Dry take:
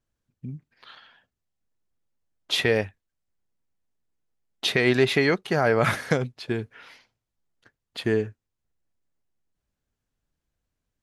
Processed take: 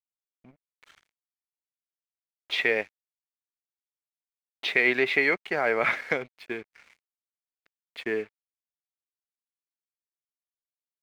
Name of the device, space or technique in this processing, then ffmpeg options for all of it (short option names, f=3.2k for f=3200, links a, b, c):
pocket radio on a weak battery: -af "highpass=330,lowpass=3.6k,aeval=exprs='sgn(val(0))*max(abs(val(0))-0.00422,0)':c=same,equalizer=f=2.2k:t=o:w=0.43:g=11,volume=-3.5dB"